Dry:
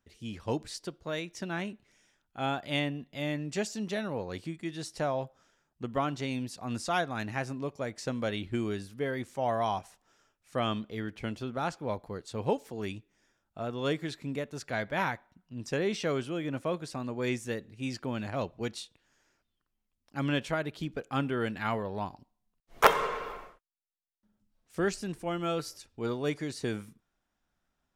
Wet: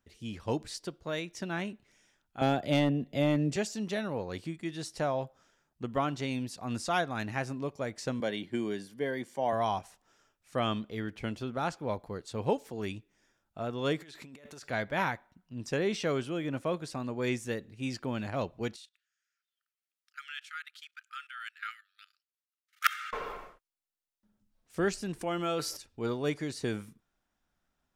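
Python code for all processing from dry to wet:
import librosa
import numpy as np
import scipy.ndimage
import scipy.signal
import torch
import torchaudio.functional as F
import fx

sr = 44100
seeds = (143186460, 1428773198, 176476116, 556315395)

y = fx.chain(x, sr, fx.low_shelf_res(hz=760.0, db=6.5, q=1.5),
    fx.clip_hard(threshold_db=-20.5),
    fx.band_squash(depth_pct=40), at=(2.41, 3.56))
y = fx.chain(y, sr, fx.highpass(hz=130.0, slope=24),
    fx.notch_comb(f0_hz=1300.0), at=(8.2, 9.53))
y = fx.chain(y, sr, fx.low_shelf(hz=380.0, db=-10.5),
    fx.over_compress(threshold_db=-50.0, ratio=-1.0), at=(14.0, 14.68))
y = fx.chain(y, sr, fx.level_steps(step_db=17),
    fx.brickwall_highpass(low_hz=1200.0), at=(18.76, 23.13))
y = fx.chain(y, sr, fx.low_shelf(hz=160.0, db=-9.0),
    fx.env_flatten(amount_pct=50), at=(25.21, 25.77))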